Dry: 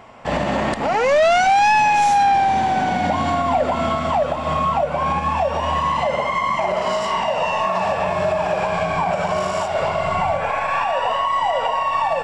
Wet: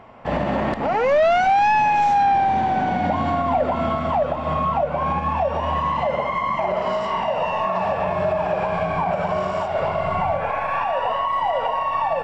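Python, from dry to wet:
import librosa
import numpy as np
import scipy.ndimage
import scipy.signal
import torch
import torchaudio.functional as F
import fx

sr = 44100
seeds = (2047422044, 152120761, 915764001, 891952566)

y = fx.spacing_loss(x, sr, db_at_10k=22)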